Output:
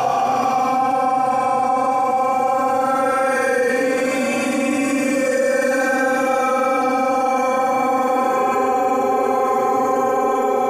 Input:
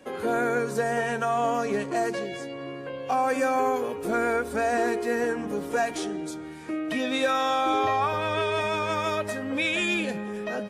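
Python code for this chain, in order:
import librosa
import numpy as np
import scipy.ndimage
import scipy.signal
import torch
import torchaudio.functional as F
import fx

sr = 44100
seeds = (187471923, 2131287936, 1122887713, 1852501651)

y = fx.paulstretch(x, sr, seeds[0], factor=17.0, window_s=0.05, from_s=3.1)
y = fx.env_flatten(y, sr, amount_pct=70)
y = y * librosa.db_to_amplitude(2.5)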